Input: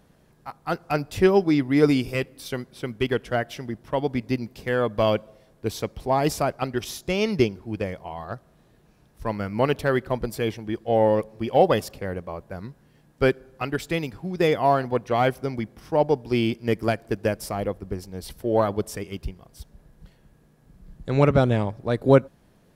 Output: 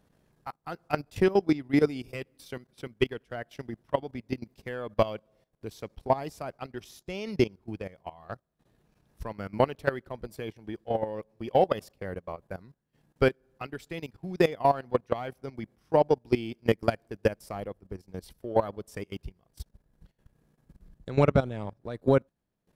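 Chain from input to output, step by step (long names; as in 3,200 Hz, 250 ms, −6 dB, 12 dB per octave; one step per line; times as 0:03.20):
transient designer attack +6 dB, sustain −8 dB
output level in coarse steps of 16 dB
level −3 dB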